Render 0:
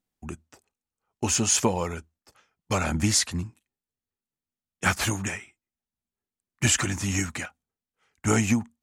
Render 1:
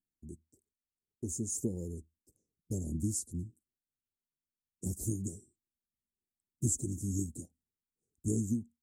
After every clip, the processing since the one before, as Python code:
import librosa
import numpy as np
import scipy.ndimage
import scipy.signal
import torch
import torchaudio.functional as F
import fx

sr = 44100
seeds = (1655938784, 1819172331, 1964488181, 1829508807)

y = scipy.signal.sosfilt(scipy.signal.ellip(3, 1.0, 60, [370.0, 7800.0], 'bandstop', fs=sr, output='sos'), x)
y = fx.rider(y, sr, range_db=10, speed_s=0.5)
y = F.gain(torch.from_numpy(y), -6.5).numpy()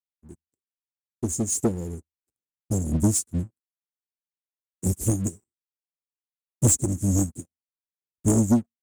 y = fx.leveller(x, sr, passes=3)
y = fx.upward_expand(y, sr, threshold_db=-39.0, expansion=2.5)
y = F.gain(torch.from_numpy(y), 8.0).numpy()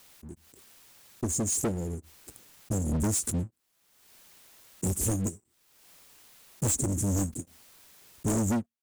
y = 10.0 ** (-24.5 / 20.0) * np.tanh(x / 10.0 ** (-24.5 / 20.0))
y = fx.pre_swell(y, sr, db_per_s=41.0)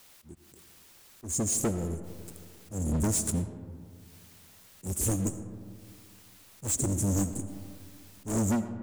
y = fx.auto_swell(x, sr, attack_ms=125.0)
y = fx.rev_freeverb(y, sr, rt60_s=2.2, hf_ratio=0.35, predelay_ms=45, drr_db=10.5)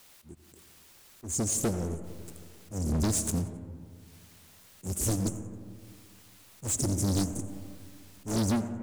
y = fx.echo_feedback(x, sr, ms=89, feedback_pct=41, wet_db=-17)
y = fx.doppler_dist(y, sr, depth_ms=0.55)